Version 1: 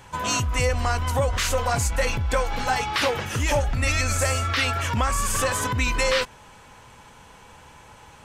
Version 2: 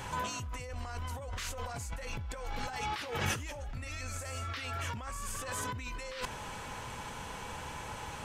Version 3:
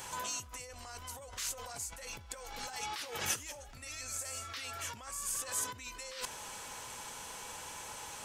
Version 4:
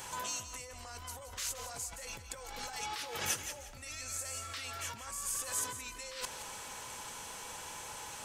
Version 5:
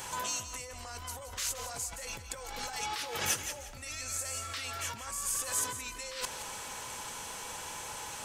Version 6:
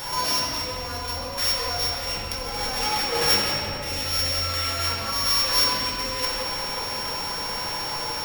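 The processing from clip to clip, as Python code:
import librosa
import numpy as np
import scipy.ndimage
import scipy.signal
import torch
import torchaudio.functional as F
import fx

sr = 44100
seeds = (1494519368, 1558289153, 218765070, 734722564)

y1 = fx.over_compress(x, sr, threshold_db=-34.0, ratio=-1.0)
y1 = y1 * librosa.db_to_amplitude(-4.5)
y2 = fx.bass_treble(y1, sr, bass_db=-9, treble_db=12)
y2 = y2 * librosa.db_to_amplitude(-5.0)
y3 = fx.echo_feedback(y2, sr, ms=171, feedback_pct=27, wet_db=-11.0)
y4 = np.clip(y3, -10.0 ** (-24.5 / 20.0), 10.0 ** (-24.5 / 20.0))
y4 = y4 * librosa.db_to_amplitude(3.5)
y5 = np.r_[np.sort(y4[:len(y4) // 8 * 8].reshape(-1, 8), axis=1).ravel(), y4[len(y4) // 8 * 8:]]
y5 = fx.room_shoebox(y5, sr, seeds[0], volume_m3=140.0, walls='hard', distance_m=0.67)
y5 = y5 * librosa.db_to_amplitude(7.0)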